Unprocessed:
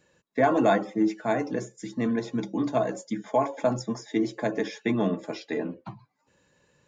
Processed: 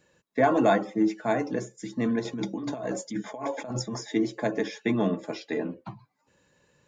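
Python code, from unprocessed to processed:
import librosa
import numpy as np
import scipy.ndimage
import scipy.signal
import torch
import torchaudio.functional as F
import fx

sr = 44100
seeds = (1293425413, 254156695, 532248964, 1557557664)

y = fx.over_compress(x, sr, threshold_db=-32.0, ratio=-1.0, at=(2.25, 4.14))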